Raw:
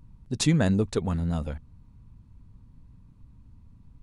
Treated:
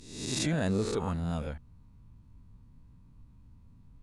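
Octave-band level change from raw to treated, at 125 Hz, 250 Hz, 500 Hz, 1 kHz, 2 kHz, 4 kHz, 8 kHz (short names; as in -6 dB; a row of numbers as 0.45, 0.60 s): -7.0, -6.0, -3.0, -1.0, -3.0, -2.5, -2.5 dB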